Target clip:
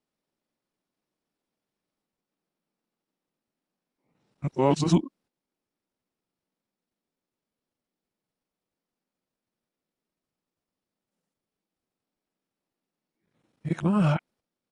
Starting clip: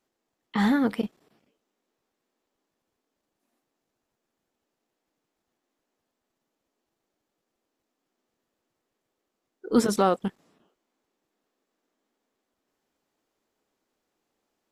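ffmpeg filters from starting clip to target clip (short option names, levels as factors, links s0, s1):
-af "areverse,agate=range=0.447:threshold=0.00178:ratio=16:detection=peak,asetrate=32097,aresample=44100,atempo=1.37395"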